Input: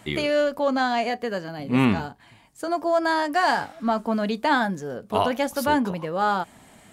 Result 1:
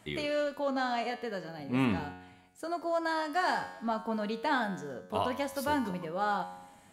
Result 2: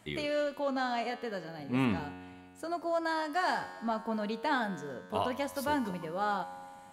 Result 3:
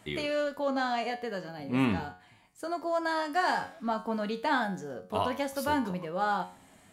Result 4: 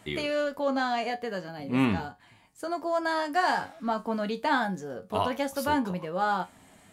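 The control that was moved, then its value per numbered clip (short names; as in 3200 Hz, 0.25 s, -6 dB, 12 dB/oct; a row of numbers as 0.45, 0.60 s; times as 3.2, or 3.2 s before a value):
resonator, decay: 1, 2.2, 0.43, 0.19 s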